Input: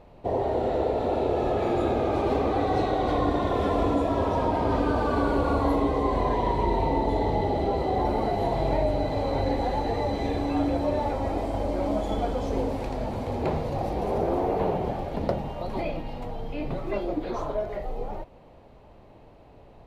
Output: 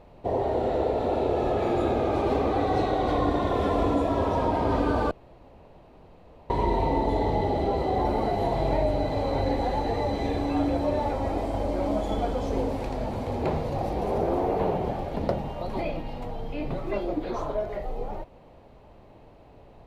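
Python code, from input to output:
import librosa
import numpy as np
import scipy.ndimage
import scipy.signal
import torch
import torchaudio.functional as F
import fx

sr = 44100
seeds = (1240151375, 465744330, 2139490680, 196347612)

y = fx.edit(x, sr, fx.room_tone_fill(start_s=5.11, length_s=1.39), tone=tone)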